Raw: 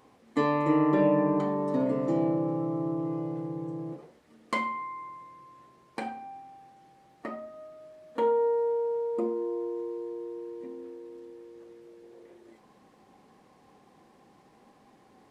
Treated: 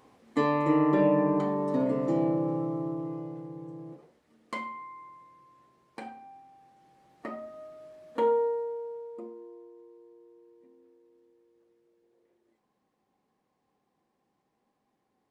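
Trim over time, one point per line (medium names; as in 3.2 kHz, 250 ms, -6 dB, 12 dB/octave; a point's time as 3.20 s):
2.56 s 0 dB
3.44 s -6.5 dB
6.51 s -6.5 dB
7.48 s +0.5 dB
8.33 s +0.5 dB
8.68 s -7 dB
9.72 s -18 dB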